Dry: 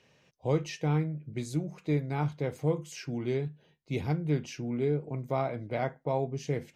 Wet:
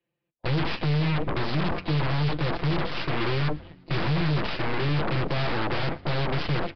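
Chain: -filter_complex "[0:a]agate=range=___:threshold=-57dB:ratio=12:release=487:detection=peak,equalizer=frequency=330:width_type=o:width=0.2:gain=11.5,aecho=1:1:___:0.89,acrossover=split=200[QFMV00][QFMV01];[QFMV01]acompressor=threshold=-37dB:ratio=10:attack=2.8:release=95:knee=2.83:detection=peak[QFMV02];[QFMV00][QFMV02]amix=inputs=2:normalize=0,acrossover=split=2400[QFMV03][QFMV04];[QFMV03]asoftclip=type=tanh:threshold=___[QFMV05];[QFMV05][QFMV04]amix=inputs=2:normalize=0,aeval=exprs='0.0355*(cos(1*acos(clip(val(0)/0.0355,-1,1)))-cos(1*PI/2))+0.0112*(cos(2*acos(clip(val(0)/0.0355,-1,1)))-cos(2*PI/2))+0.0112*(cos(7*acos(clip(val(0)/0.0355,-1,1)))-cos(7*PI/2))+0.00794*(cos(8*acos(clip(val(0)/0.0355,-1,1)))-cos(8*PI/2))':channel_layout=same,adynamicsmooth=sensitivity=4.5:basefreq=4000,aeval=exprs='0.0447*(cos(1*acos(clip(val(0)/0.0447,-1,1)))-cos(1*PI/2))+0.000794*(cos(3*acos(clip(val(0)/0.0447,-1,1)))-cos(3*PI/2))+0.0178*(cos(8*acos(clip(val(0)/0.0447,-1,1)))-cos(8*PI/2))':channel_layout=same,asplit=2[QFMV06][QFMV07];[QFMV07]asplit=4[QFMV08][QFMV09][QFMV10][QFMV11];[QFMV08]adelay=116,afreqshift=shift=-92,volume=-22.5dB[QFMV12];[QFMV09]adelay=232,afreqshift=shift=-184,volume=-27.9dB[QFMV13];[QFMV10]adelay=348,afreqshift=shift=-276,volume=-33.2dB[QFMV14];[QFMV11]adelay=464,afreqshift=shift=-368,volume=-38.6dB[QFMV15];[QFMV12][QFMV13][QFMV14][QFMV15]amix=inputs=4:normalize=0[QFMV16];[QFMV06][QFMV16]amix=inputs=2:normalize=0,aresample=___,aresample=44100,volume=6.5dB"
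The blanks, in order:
-29dB, 5.8, -30.5dB, 11025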